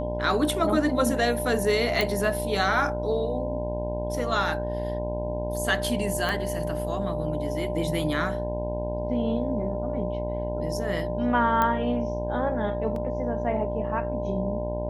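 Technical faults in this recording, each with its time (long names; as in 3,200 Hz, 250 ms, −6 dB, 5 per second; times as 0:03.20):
mains buzz 60 Hz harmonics 17 −32 dBFS
whistle 600 Hz −31 dBFS
0:02.01: click
0:06.29: click −14 dBFS
0:11.62: click −11 dBFS
0:12.96: drop-out 2.7 ms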